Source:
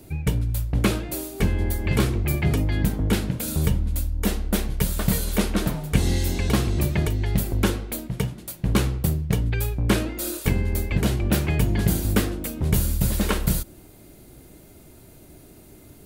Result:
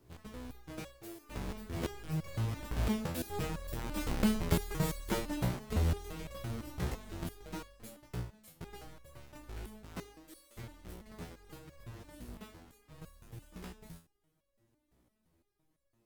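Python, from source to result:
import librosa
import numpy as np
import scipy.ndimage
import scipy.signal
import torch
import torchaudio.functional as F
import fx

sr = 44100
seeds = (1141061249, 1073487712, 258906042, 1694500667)

y = fx.halfwave_hold(x, sr)
y = fx.doppler_pass(y, sr, speed_mps=27, closest_m=22.0, pass_at_s=4.21)
y = fx.resonator_held(y, sr, hz=5.9, low_hz=61.0, high_hz=560.0)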